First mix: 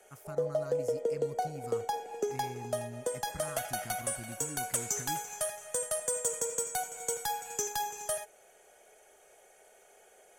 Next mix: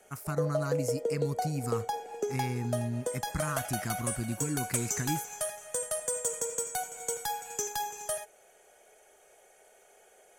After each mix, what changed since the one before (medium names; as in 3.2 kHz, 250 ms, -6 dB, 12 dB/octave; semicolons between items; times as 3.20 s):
speech +11.0 dB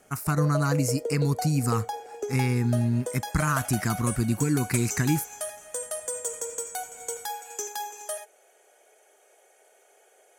speech +9.0 dB; background: add high-pass 270 Hz 24 dB/octave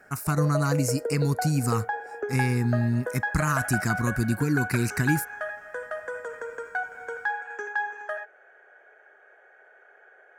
background: add resonant low-pass 1.6 kHz, resonance Q 9.2